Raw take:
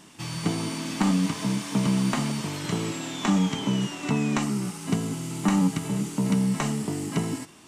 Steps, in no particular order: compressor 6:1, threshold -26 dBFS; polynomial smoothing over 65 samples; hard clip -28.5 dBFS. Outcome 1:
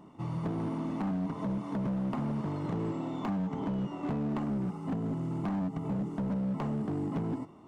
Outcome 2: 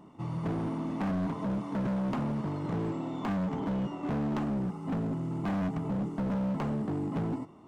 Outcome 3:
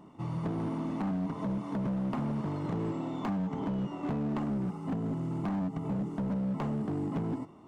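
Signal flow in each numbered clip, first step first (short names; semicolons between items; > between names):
compressor > polynomial smoothing > hard clip; polynomial smoothing > hard clip > compressor; polynomial smoothing > compressor > hard clip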